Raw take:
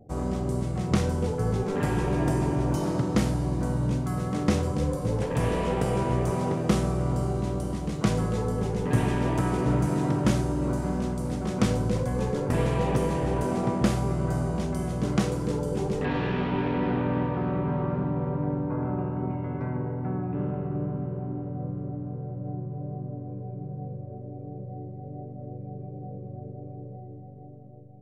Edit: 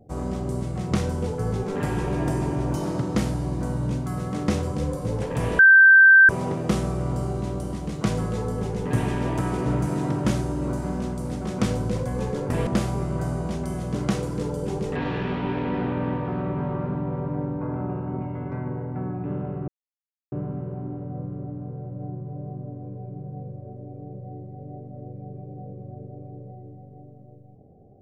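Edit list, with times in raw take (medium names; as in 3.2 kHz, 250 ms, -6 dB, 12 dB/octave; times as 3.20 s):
5.59–6.29 s: bleep 1.56 kHz -8.5 dBFS
12.67–13.76 s: delete
20.77 s: insert silence 0.64 s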